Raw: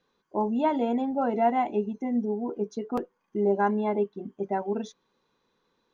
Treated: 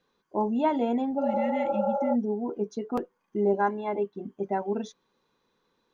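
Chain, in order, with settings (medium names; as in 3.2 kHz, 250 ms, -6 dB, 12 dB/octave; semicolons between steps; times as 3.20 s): 1.22–2.12 s: spectral replace 350–1700 Hz before; 3.53–4.15 s: comb of notches 220 Hz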